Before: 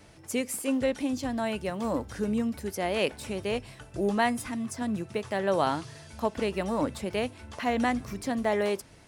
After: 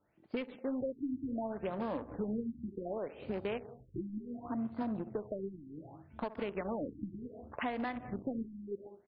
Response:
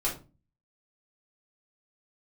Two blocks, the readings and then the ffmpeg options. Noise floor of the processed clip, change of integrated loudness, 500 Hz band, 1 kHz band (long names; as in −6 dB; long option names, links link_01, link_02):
−62 dBFS, −9.5 dB, −10.0 dB, −12.0 dB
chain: -filter_complex "[0:a]lowshelf=frequency=96:gain=-11.5,asplit=2[link_01][link_02];[link_02]adelay=62,lowpass=frequency=3400:poles=1,volume=-13.5dB,asplit=2[link_03][link_04];[link_04]adelay=62,lowpass=frequency=3400:poles=1,volume=0.46,asplit=2[link_05][link_06];[link_06]adelay=62,lowpass=frequency=3400:poles=1,volume=0.46,asplit=2[link_07][link_08];[link_08]adelay=62,lowpass=frequency=3400:poles=1,volume=0.46[link_09];[link_01][link_03][link_05][link_07][link_09]amix=inputs=5:normalize=0,afwtdn=0.0112,acontrast=36,asplit=2[link_10][link_11];[1:a]atrim=start_sample=2205,atrim=end_sample=3969,adelay=149[link_12];[link_11][link_12]afir=irnorm=-1:irlink=0,volume=-26dB[link_13];[link_10][link_13]amix=inputs=2:normalize=0,acompressor=threshold=-29dB:ratio=16,aeval=exprs='0.0891*(cos(1*acos(clip(val(0)/0.0891,-1,1)))-cos(1*PI/2))+0.01*(cos(3*acos(clip(val(0)/0.0891,-1,1)))-cos(3*PI/2))+0.00447*(cos(7*acos(clip(val(0)/0.0891,-1,1)))-cos(7*PI/2))':channel_layout=same,asoftclip=type=tanh:threshold=-29.5dB,afftfilt=real='re*lt(b*sr/1024,340*pow(5200/340,0.5+0.5*sin(2*PI*0.67*pts/sr)))':imag='im*lt(b*sr/1024,340*pow(5200/340,0.5+0.5*sin(2*PI*0.67*pts/sr)))':win_size=1024:overlap=0.75,volume=1.5dB"